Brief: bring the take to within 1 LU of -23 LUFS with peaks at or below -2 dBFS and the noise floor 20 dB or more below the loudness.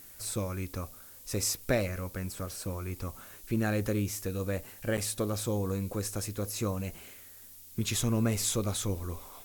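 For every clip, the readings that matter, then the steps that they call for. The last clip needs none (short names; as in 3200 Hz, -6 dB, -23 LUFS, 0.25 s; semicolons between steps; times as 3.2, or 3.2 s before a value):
dropouts 1; longest dropout 8.4 ms; noise floor -51 dBFS; noise floor target -53 dBFS; loudness -33.0 LUFS; peak -14.0 dBFS; loudness target -23.0 LUFS
-> interpolate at 4.97, 8.4 ms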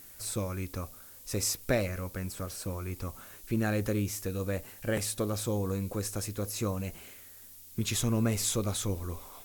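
dropouts 0; noise floor -51 dBFS; noise floor target -53 dBFS
-> denoiser 6 dB, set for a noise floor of -51 dBFS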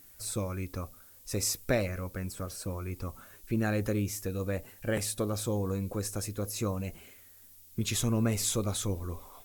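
noise floor -55 dBFS; loudness -33.0 LUFS; peak -14.0 dBFS; loudness target -23.0 LUFS
-> gain +10 dB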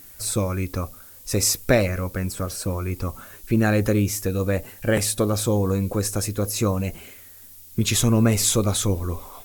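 loudness -23.0 LUFS; peak -4.0 dBFS; noise floor -45 dBFS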